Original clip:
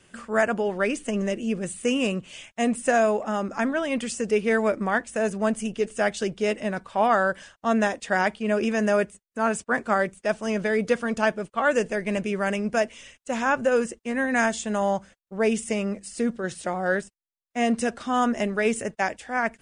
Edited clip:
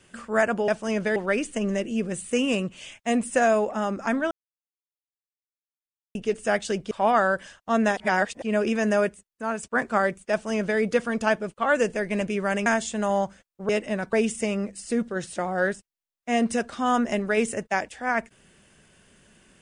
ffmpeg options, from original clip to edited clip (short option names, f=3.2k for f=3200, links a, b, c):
-filter_complex "[0:a]asplit=12[a][b][c][d][e][f][g][h][i][j][k][l];[a]atrim=end=0.682[m];[b]atrim=start=10.268:end=10.752[n];[c]atrim=start=0.678:end=3.83,asetpts=PTS-STARTPTS,afade=t=out:st=3.148:d=0.004:c=hsin[o];[d]atrim=start=3.83:end=5.67,asetpts=PTS-STARTPTS,volume=0[p];[e]atrim=start=5.67:end=6.432,asetpts=PTS-STARTPTS,afade=t=in:d=0.004:c=hsin[q];[f]atrim=start=6.868:end=7.932[r];[g]atrim=start=7.928:end=8.382,asetpts=PTS-STARTPTS,areverse[s];[h]atrim=start=8.378:end=9.59,asetpts=PTS-STARTPTS,afade=t=out:st=0.502:d=0.71:silence=0.473151[t];[i]atrim=start=9.59:end=12.622,asetpts=PTS-STARTPTS,afade=t=in:d=0.004:c=hsin:silence=0.473151[u];[j]atrim=start=14.378:end=15.412[v];[k]atrim=start=6.428:end=6.872[w];[l]atrim=start=15.408[x];[m][n]acrossfade=d=0.004:c1=hsin:c2=hsin[y];[o][p][q]concat=n=3:v=0:a=1[z];[y][z]acrossfade=d=0.004:c1=hsin:c2=hsin[aa];[aa][r]acrossfade=d=0.004:c1=hsin:c2=hsin[ab];[ab][s]acrossfade=d=0.004:c1=hsin:c2=hsin[ac];[t][u]concat=n=2:v=0:a=1[ad];[ac][ad]acrossfade=d=0.004:c1=hsin:c2=hsin[ae];[ae][v]acrossfade=d=0.004:c1=hsin:c2=hsin[af];[af][w]acrossfade=d=0.004:c1=hsin:c2=hsin[ag];[ag][x]acrossfade=d=0.004:c1=hsin:c2=hsin"